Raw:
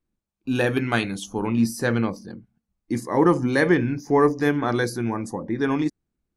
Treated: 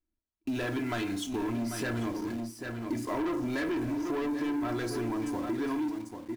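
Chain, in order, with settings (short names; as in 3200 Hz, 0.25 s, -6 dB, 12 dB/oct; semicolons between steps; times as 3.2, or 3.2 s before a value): on a send at -8 dB: reverb RT60 0.55 s, pre-delay 3 ms; on the sum: soft clip -20 dBFS, distortion -8 dB; high shelf 6000 Hz -6 dB; comb 3 ms, depth 70%; in parallel at -6 dB: requantised 6-bit, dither none; on the sum: echo 0.792 s -11 dB; sample leveller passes 1; compressor, threshold -21 dBFS, peak gain reduction 8 dB; gain -8.5 dB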